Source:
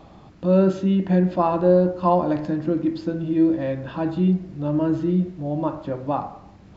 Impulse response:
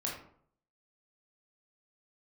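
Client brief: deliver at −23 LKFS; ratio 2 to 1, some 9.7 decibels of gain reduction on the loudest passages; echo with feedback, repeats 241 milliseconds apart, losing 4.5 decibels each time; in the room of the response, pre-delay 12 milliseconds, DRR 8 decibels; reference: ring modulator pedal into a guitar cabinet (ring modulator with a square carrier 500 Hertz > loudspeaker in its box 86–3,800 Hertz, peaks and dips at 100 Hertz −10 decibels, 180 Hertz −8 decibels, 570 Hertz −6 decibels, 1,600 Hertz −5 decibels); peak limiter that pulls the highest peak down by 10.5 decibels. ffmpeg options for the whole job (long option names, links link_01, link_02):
-filter_complex "[0:a]acompressor=threshold=-31dB:ratio=2,alimiter=level_in=2dB:limit=-24dB:level=0:latency=1,volume=-2dB,aecho=1:1:241|482|723|964|1205|1446|1687|1928|2169:0.596|0.357|0.214|0.129|0.0772|0.0463|0.0278|0.0167|0.01,asplit=2[link_01][link_02];[1:a]atrim=start_sample=2205,adelay=12[link_03];[link_02][link_03]afir=irnorm=-1:irlink=0,volume=-11dB[link_04];[link_01][link_04]amix=inputs=2:normalize=0,aeval=exprs='val(0)*sgn(sin(2*PI*500*n/s))':channel_layout=same,highpass=86,equalizer=frequency=100:width_type=q:width=4:gain=-10,equalizer=frequency=180:width_type=q:width=4:gain=-8,equalizer=frequency=570:width_type=q:width=4:gain=-6,equalizer=frequency=1600:width_type=q:width=4:gain=-5,lowpass=frequency=3800:width=0.5412,lowpass=frequency=3800:width=1.3066,volume=10.5dB"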